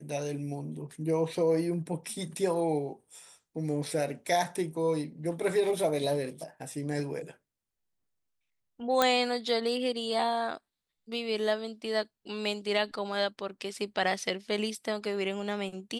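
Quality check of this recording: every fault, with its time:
9.02 s: pop -9 dBFS

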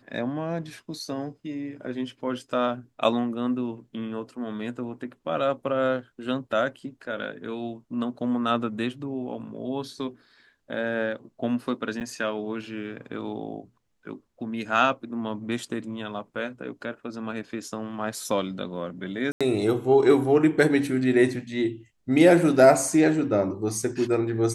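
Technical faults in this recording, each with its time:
12.00–12.01 s: dropout 8.8 ms
19.32–19.41 s: dropout 86 ms

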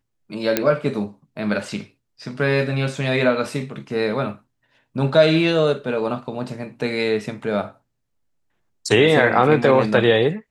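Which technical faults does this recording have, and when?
0.57 s: pop -2 dBFS

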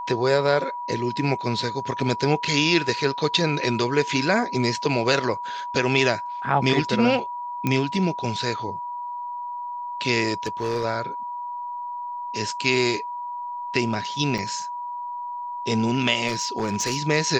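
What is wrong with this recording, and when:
whine 970 Hz -29 dBFS
7.67 s: pop -10 dBFS
10.43–10.85 s: clipped -20.5 dBFS
14.38 s: dropout 4.2 ms
16.27–17.08 s: clipped -19 dBFS

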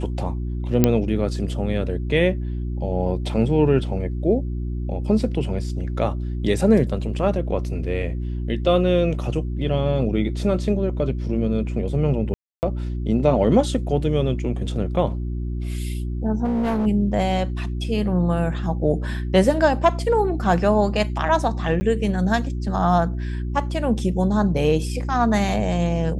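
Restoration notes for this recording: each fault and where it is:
hum 60 Hz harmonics 6 -26 dBFS
0.84 s: pop -2 dBFS
12.34–12.63 s: dropout 289 ms
16.44–16.87 s: clipped -19 dBFS
21.80–21.81 s: dropout 10 ms

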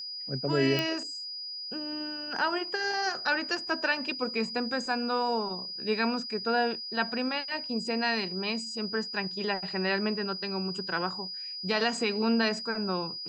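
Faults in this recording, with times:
whine 4.9 kHz -36 dBFS
0.79 s: pop -14 dBFS

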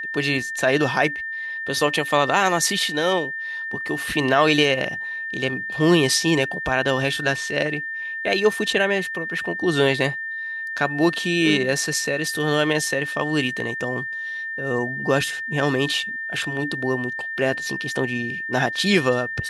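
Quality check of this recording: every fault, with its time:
whine 1.8 kHz -27 dBFS

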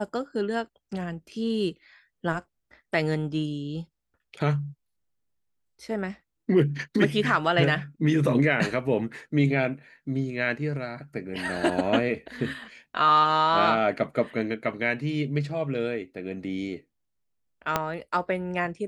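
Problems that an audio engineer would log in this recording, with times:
17.76 s: pop -8 dBFS

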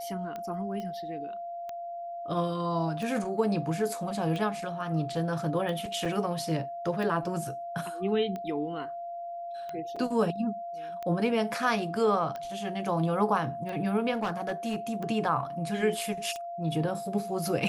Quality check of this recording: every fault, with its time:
tick 45 rpm -24 dBFS
whine 690 Hz -35 dBFS
0.80 s: pop -26 dBFS
6.05 s: dropout 4.6 ms
9.96 s: dropout 4.8 ms
14.13–14.76 s: clipped -26 dBFS

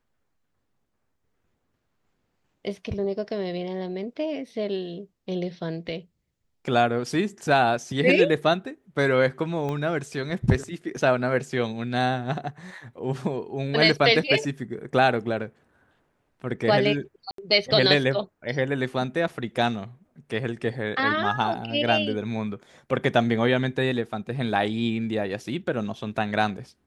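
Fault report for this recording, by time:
9.69 s: pop -19 dBFS
17.31–17.38 s: dropout 73 ms

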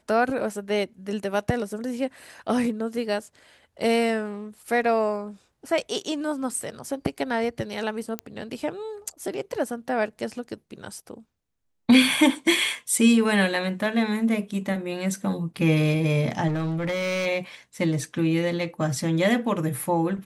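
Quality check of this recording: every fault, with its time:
8.19 s: pop -14 dBFS
16.47–17.27 s: clipped -23.5 dBFS

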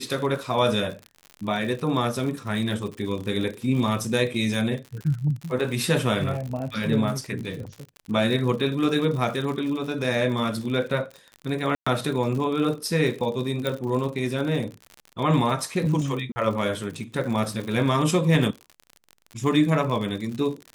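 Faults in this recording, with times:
crackle 72 per s -31 dBFS
11.75–11.87 s: dropout 115 ms
13.67 s: pop -13 dBFS
16.32–16.36 s: dropout 40 ms

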